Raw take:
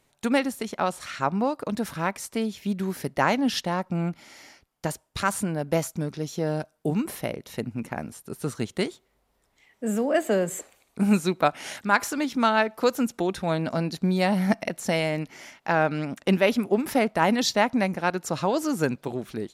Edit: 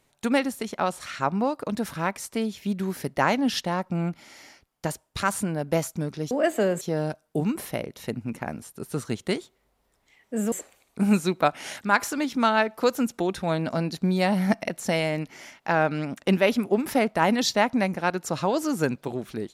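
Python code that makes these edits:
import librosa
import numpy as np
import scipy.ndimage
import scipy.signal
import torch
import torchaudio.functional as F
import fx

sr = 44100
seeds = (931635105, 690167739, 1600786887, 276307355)

y = fx.edit(x, sr, fx.move(start_s=10.02, length_s=0.5, to_s=6.31), tone=tone)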